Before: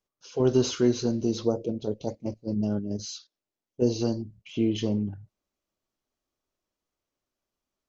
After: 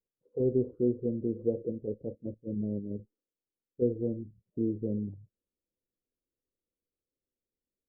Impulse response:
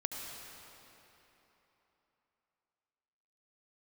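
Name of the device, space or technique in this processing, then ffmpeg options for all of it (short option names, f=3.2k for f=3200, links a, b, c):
under water: -af "lowpass=f=450:w=0.5412,lowpass=f=450:w=1.3066,equalizer=f=500:t=o:w=0.35:g=10,volume=-6dB"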